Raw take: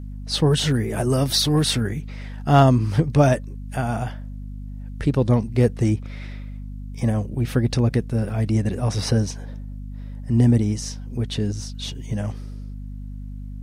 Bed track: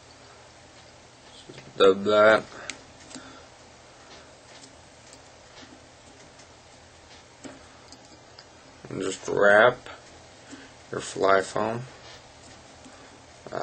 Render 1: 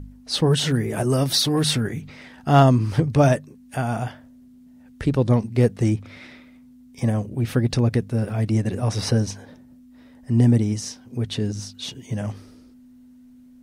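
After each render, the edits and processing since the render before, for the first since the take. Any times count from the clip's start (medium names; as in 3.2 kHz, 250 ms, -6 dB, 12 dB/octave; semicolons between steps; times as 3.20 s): de-hum 50 Hz, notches 4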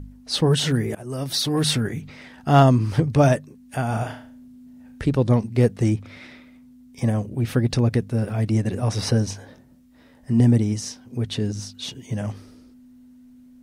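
0.95–1.65 s: fade in, from -21 dB; 3.87–5.03 s: flutter echo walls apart 6.1 m, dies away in 0.4 s; 9.28–10.40 s: doubling 22 ms -6 dB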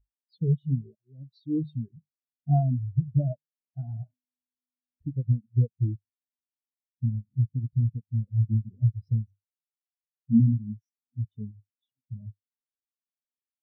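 compression 6:1, threshold -20 dBFS, peak gain reduction 10.5 dB; spectral contrast expander 4:1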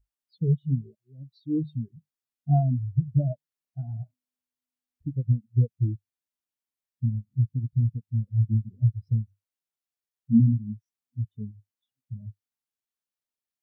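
trim +1 dB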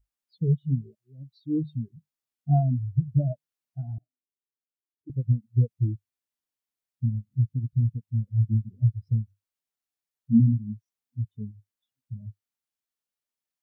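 3.98–5.10 s: Butterworth band-pass 360 Hz, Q 3.2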